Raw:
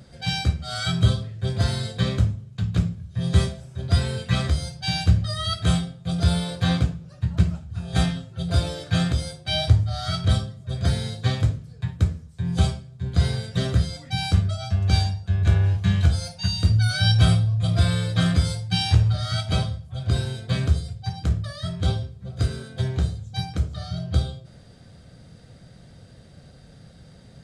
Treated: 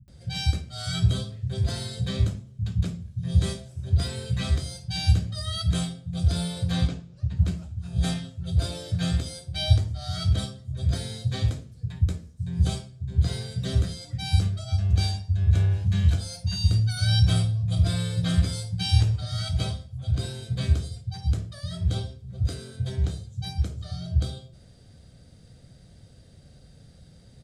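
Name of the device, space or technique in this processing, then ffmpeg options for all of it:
smiley-face EQ: -filter_complex "[0:a]lowshelf=f=140:g=5,equalizer=f=1200:t=o:w=1.9:g=-5,highshelf=f=6300:g=5.5,asettb=1/sr,asplit=3[s0][s1][s2];[s0]atrim=end=6.804[s3];[s1]atrim=start=6.8:end=7.29,asetpts=PTS-STARTPTS,afade=t=in:d=0.004:c=qsin,afade=t=out:st=0.486:d=0.004:c=qsin,lowpass=6400[s4];[s2]atrim=start=7.286[s5];[s3][s4]acrossfade=d=0.004:c1=hsin:c2=qsin[s6];[s6][s5]acrossfade=d=0.004:c1=qsin:c2=hsin,acrossover=split=160[s7][s8];[s8]adelay=80[s9];[s7][s9]amix=inputs=2:normalize=0,volume=0.596"

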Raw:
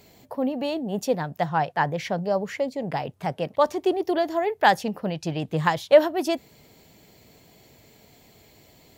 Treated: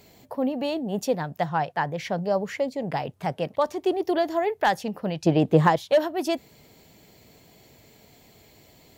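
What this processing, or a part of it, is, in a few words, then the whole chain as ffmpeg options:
clipper into limiter: -filter_complex "[0:a]asoftclip=type=hard:threshold=0.355,alimiter=limit=0.224:level=0:latency=1:release=415,asettb=1/sr,asplit=3[s0][s1][s2];[s0]atrim=end=5.264[s3];[s1]atrim=start=5.26:end=5.76,asetpts=PTS-STARTPTS,afade=t=in:d=0.004:c=qsin,afade=t=out:st=0.496:d=0.004:c=qsin,equalizer=f=400:w=0.4:g=10.5[s4];[s2]atrim=start=5.756[s5];[s3][s4]acrossfade=d=0.004:c1=hsin:c2=qsin[s6];[s6][s5]acrossfade=d=0.004:c1=qsin:c2=hsin"

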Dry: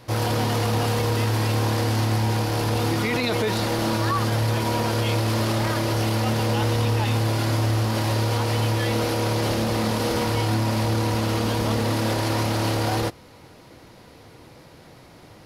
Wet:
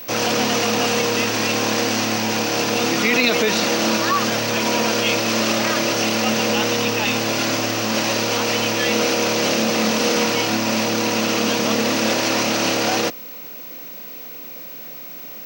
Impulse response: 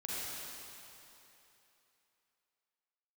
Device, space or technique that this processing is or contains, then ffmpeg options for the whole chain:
old television with a line whistle: -af "highpass=f=190:w=0.5412,highpass=f=190:w=1.3066,equalizer=f=360:t=q:w=4:g=-6,equalizer=f=900:t=q:w=4:g=-6,equalizer=f=2600:t=q:w=4:g=7,equalizer=f=6000:t=q:w=4:g=9,lowpass=f=8500:w=0.5412,lowpass=f=8500:w=1.3066,aeval=exprs='val(0)+0.0112*sin(2*PI*15734*n/s)':c=same,volume=2.11"

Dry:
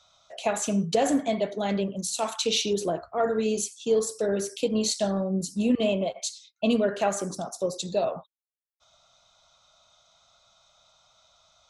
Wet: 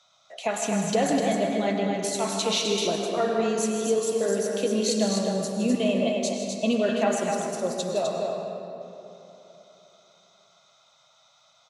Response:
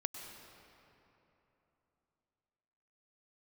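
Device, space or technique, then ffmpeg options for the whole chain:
stadium PA: -filter_complex "[0:a]highpass=f=120:w=0.5412,highpass=f=120:w=1.3066,equalizer=f=2000:t=o:w=0.4:g=5,aecho=1:1:157.4|253.6:0.282|0.562[s0];[1:a]atrim=start_sample=2205[s1];[s0][s1]afir=irnorm=-1:irlink=0"

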